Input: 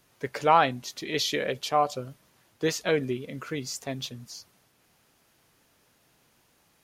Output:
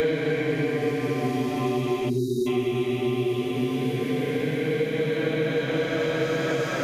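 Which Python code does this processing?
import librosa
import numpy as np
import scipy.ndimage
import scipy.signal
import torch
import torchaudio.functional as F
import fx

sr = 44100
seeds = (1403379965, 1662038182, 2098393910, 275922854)

p1 = fx.reverse_delay_fb(x, sr, ms=348, feedback_pct=46, wet_db=-6)
p2 = fx.paulstretch(p1, sr, seeds[0], factor=15.0, window_s=0.25, from_s=2.96)
p3 = fx.spec_erase(p2, sr, start_s=2.1, length_s=0.37, low_hz=440.0, high_hz=3700.0)
p4 = p3 + fx.echo_single(p3, sr, ms=89, db=-20.5, dry=0)
p5 = fx.band_squash(p4, sr, depth_pct=100)
y = p5 * 10.0 ** (3.0 / 20.0)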